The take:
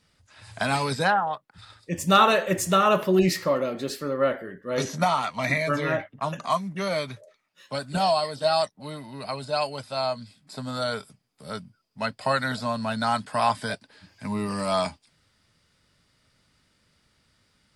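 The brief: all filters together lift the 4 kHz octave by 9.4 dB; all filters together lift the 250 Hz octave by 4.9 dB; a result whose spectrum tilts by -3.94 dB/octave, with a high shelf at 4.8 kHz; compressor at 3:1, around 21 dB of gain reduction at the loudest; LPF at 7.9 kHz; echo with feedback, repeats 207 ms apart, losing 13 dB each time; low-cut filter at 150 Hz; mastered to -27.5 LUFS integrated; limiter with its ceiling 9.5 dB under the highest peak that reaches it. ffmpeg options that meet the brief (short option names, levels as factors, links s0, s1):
-af "highpass=150,lowpass=7900,equalizer=f=250:t=o:g=8,equalizer=f=4000:t=o:g=8,highshelf=f=4800:g=6.5,acompressor=threshold=0.01:ratio=3,alimiter=level_in=1.88:limit=0.0631:level=0:latency=1,volume=0.531,aecho=1:1:207|414|621:0.224|0.0493|0.0108,volume=4.22"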